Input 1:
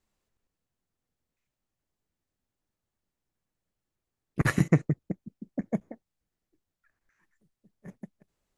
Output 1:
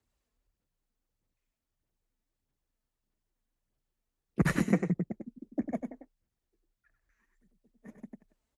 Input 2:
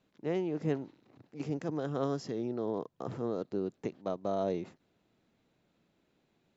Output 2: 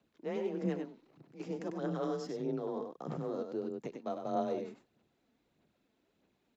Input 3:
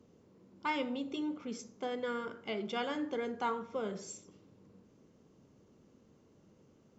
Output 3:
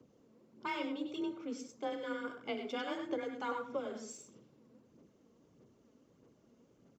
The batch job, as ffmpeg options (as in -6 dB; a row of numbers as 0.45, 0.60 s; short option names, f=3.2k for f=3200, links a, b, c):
-af "aecho=1:1:98:0.473,aphaser=in_gain=1:out_gain=1:delay=4.8:decay=0.43:speed=1.6:type=sinusoidal,afreqshift=28,volume=-4.5dB"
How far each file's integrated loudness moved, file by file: -3.0, -2.5, -2.5 LU